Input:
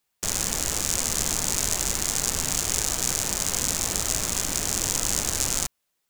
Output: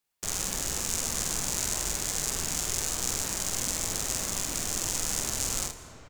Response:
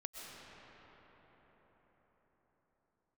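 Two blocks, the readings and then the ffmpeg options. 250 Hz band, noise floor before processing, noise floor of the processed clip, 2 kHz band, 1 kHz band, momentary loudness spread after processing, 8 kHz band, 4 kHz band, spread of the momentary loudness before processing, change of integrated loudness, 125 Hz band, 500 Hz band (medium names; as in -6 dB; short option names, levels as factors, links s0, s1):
-4.5 dB, -77 dBFS, -48 dBFS, -4.5 dB, -4.5 dB, 2 LU, -5.0 dB, -5.0 dB, 1 LU, -5.0 dB, -5.0 dB, -4.5 dB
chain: -filter_complex "[0:a]aecho=1:1:47|76:0.631|0.178,asplit=2[s0][s1];[1:a]atrim=start_sample=2205,asetrate=35280,aresample=44100[s2];[s1][s2]afir=irnorm=-1:irlink=0,volume=0.447[s3];[s0][s3]amix=inputs=2:normalize=0,volume=0.376"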